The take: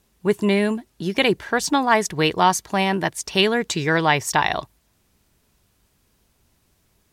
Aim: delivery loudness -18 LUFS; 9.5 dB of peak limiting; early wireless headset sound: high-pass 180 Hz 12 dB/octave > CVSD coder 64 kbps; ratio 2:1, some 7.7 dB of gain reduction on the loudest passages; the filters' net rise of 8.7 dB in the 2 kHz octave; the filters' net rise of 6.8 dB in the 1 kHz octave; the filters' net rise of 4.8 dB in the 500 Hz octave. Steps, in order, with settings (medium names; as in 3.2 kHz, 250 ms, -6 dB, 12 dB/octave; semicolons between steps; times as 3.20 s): peaking EQ 500 Hz +4.5 dB; peaking EQ 1 kHz +5 dB; peaking EQ 2 kHz +9 dB; compression 2:1, threshold -19 dBFS; peak limiter -9 dBFS; high-pass 180 Hz 12 dB/octave; CVSD coder 64 kbps; trim +5.5 dB